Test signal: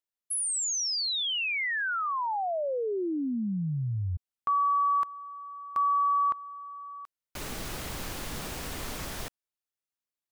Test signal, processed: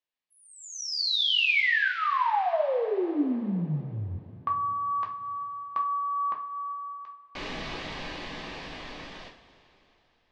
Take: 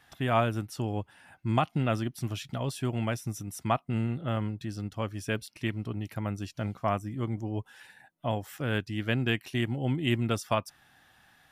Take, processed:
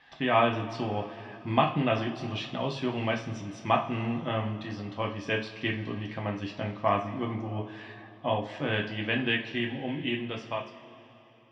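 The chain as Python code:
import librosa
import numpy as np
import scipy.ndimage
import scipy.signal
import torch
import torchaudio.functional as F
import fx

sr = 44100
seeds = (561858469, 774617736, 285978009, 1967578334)

y = fx.fade_out_tail(x, sr, length_s=2.91)
y = scipy.signal.sosfilt(scipy.signal.butter(4, 4200.0, 'lowpass', fs=sr, output='sos'), y)
y = fx.low_shelf(y, sr, hz=240.0, db=-9.0)
y = fx.notch(y, sr, hz=1400.0, q=6.8)
y = fx.rev_double_slope(y, sr, seeds[0], early_s=0.33, late_s=3.5, knee_db=-19, drr_db=0.0)
y = F.gain(torch.from_numpy(y), 3.0).numpy()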